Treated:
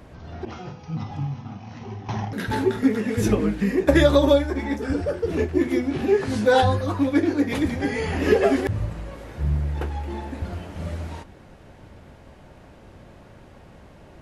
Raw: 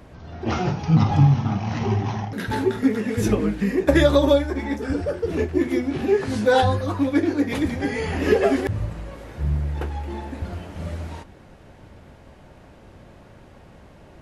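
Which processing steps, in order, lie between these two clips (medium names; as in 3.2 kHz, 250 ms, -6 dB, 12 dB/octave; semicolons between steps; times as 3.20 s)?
0.45–2.09 s: feedback comb 250 Hz, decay 0.81 s, mix 80%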